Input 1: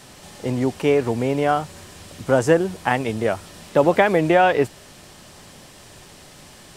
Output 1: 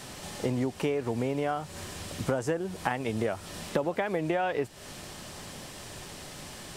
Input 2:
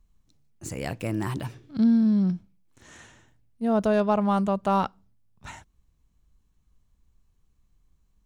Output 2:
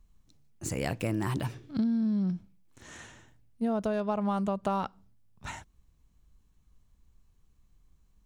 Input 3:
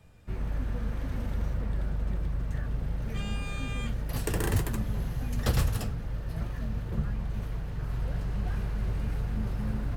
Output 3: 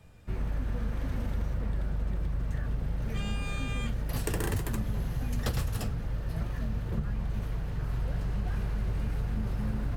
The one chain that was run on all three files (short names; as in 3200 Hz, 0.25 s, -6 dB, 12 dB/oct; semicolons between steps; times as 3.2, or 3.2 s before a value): compressor 10:1, threshold -27 dBFS; gain +1.5 dB